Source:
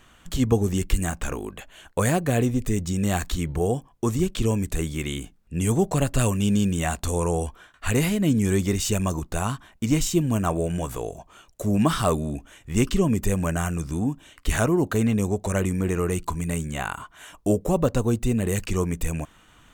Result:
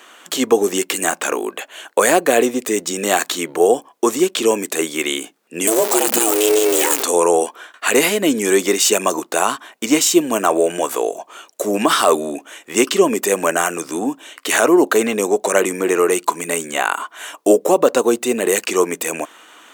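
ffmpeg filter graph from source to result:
-filter_complex "[0:a]asettb=1/sr,asplit=3[a][b][c];[a]atrim=end=5.674[d];[b]atrim=start=5.67:end=7.03,asetpts=PTS-STARTPTS,afade=t=in:d=0.004:c=qsin,afade=t=out:st=1.356:d=0.004:c=qsin,aeval=exprs='val(0)+0.5*0.0531*sgn(val(0))':c=same,aemphasis=mode=production:type=50kf,aeval=exprs='val(0)*sin(2*PI*220*n/s)':c=same[e];[c]atrim=start=7.026[f];[d][e]acrossfade=d=0.004:c1=hsin:c2=qsin[g];[g][f]acrossfade=d=0.004:c1=qsin:c2=hsin,highpass=f=330:w=0.5412,highpass=f=330:w=1.3066,alimiter=level_in=13.5dB:limit=-1dB:release=50:level=0:latency=1,volume=-1dB"

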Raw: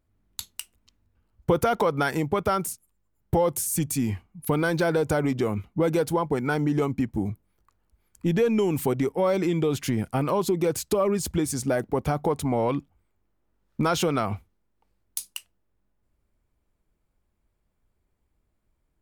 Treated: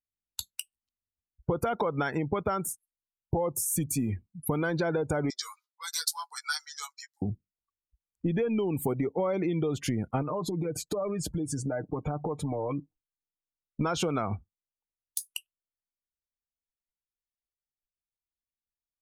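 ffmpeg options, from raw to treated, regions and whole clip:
-filter_complex "[0:a]asettb=1/sr,asplit=3[a][b][c];[a]atrim=end=5.304[d];[b]atrim=start=5.3:end=7.22,asetpts=PTS-STARTPTS,afade=t=in:d=0.004:c=qsin,afade=t=out:st=1.916:d=0.004:c=qsin,highpass=f=1.3k:w=0.5412,highpass=f=1.3k:w=1.3066,highshelf=f=3.4k:t=q:w=3:g=9.5,asplit=2[e][f];[f]adelay=13,volume=-4dB[g];[e][g]amix=inputs=2:normalize=0,atrim=end_sample=84672[h];[c]atrim=start=7.216[i];[d][h]acrossfade=d=0.004:c1=hsin:c2=qsin[j];[j][i]acrossfade=d=0.004:c1=qsin:c2=hsin,asettb=1/sr,asplit=3[k][l][m];[k]atrim=end=10.224[n];[l]atrim=start=10.22:end=13.81,asetpts=PTS-STARTPTS,afade=t=in:d=0.004:c=qsin,afade=t=out:st=3.586:d=0.004:c=qsin,highshelf=f=4.3k:g=-6.5,aecho=1:1:6.6:0.59,atrim=end_sample=158319,acompressor=threshold=-27dB:ratio=8:attack=3.2:release=140:knee=1:detection=peak[o];[m]atrim=start=13.806[p];[n][o]acrossfade=d=0.004:c1=hsin:c2=qsin[q];[q][p]acrossfade=d=0.004:c1=qsin:c2=hsin,acompressor=threshold=-25dB:ratio=6,afftdn=nr=33:nf=-41"

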